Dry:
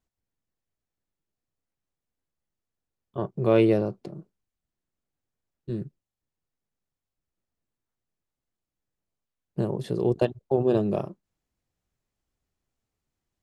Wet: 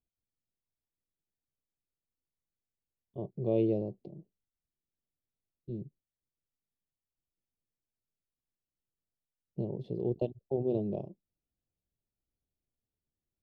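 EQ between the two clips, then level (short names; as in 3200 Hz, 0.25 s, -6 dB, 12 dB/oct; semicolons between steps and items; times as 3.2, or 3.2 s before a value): Butterworth band-stop 1500 Hz, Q 0.58; air absorption 330 m; -7.5 dB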